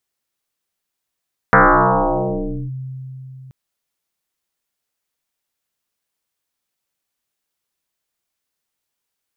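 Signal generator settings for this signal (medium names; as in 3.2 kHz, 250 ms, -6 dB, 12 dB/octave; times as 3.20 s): FM tone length 1.98 s, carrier 131 Hz, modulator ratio 1.24, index 10, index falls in 1.18 s linear, decay 3.95 s, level -6 dB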